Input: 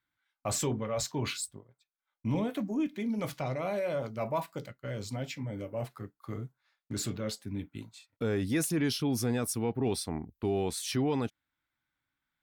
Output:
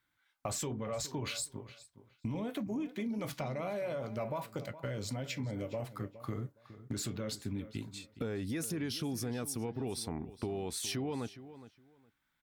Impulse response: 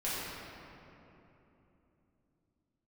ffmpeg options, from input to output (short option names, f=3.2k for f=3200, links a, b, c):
-filter_complex "[0:a]asplit=2[a][b];[b]alimiter=level_in=4.5dB:limit=-24dB:level=0:latency=1:release=69,volume=-4.5dB,volume=3dB[c];[a][c]amix=inputs=2:normalize=0,acompressor=threshold=-32dB:ratio=6,asplit=2[d][e];[e]adelay=415,lowpass=f=4.1k:p=1,volume=-14.5dB,asplit=2[f][g];[g]adelay=415,lowpass=f=4.1k:p=1,volume=0.2[h];[d][f][h]amix=inputs=3:normalize=0,volume=-2.5dB"